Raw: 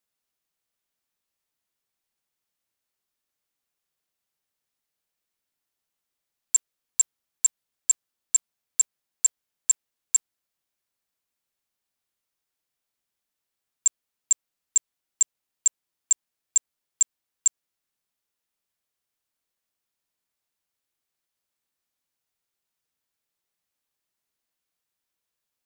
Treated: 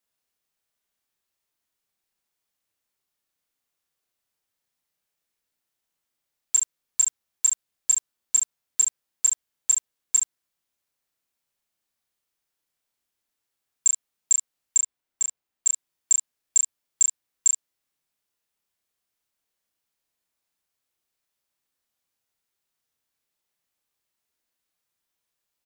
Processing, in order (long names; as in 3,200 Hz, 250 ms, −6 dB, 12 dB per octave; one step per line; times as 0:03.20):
0:14.77–0:15.67: parametric band 12,000 Hz −6.5 dB 2.7 octaves
ambience of single reflections 32 ms −4 dB, 70 ms −8 dB